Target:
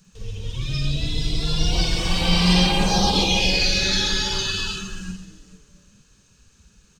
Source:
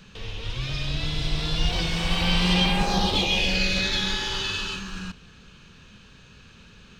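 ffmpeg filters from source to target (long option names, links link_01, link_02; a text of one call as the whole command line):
ffmpeg -i in.wav -filter_complex "[0:a]asplit=2[link_01][link_02];[link_02]aecho=0:1:50|130|258|462.8|790.5:0.631|0.398|0.251|0.158|0.1[link_03];[link_01][link_03]amix=inputs=2:normalize=0,afftdn=noise_reduction=14:noise_floor=-31,highshelf=frequency=4800:width_type=q:width=1.5:gain=13.5,asplit=2[link_04][link_05];[link_05]asplit=3[link_06][link_07][link_08];[link_06]adelay=225,afreqshift=130,volume=-23dB[link_09];[link_07]adelay=450,afreqshift=260,volume=-30.3dB[link_10];[link_08]adelay=675,afreqshift=390,volume=-37.7dB[link_11];[link_09][link_10][link_11]amix=inputs=3:normalize=0[link_12];[link_04][link_12]amix=inputs=2:normalize=0,volume=2dB" out.wav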